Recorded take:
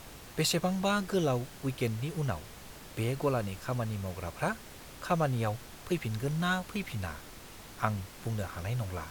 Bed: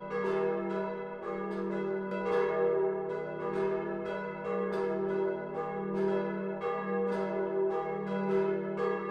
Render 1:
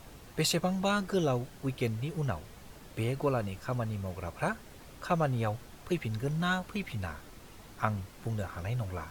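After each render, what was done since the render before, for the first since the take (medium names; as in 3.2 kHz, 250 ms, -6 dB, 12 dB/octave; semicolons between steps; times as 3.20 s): noise reduction 6 dB, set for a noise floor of -49 dBFS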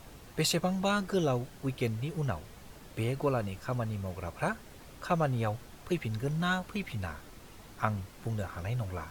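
no audible change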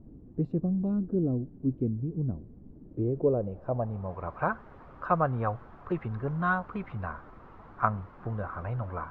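low-pass sweep 280 Hz -> 1.2 kHz, 2.82–4.32 s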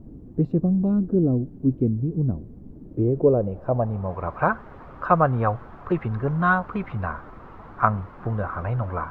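trim +7.5 dB; peak limiter -2 dBFS, peak gain reduction 1 dB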